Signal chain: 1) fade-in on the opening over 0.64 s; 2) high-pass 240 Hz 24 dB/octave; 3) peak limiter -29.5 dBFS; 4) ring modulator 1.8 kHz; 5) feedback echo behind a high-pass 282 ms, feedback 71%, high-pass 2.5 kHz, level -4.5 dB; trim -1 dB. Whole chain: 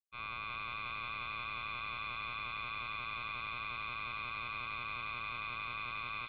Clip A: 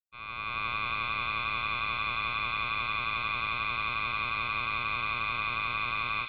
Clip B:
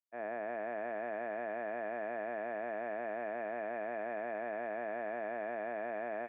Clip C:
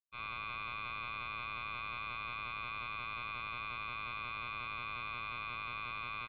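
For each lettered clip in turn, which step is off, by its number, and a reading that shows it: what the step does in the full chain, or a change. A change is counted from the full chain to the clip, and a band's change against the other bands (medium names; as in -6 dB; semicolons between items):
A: 3, mean gain reduction 9.0 dB; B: 4, crest factor change -3.5 dB; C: 5, echo-to-direct -8.5 dB to none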